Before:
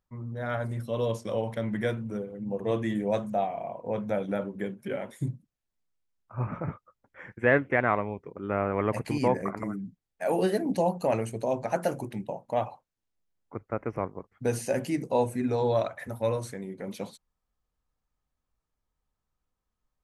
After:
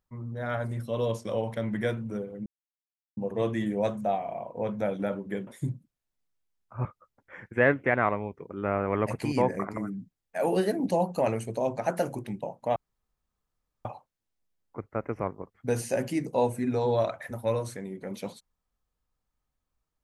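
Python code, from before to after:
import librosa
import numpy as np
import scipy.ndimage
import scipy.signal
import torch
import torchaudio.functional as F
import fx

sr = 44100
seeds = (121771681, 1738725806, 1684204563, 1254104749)

y = fx.edit(x, sr, fx.insert_silence(at_s=2.46, length_s=0.71),
    fx.cut(start_s=4.76, length_s=0.3),
    fx.cut(start_s=6.44, length_s=0.27),
    fx.insert_room_tone(at_s=12.62, length_s=1.09), tone=tone)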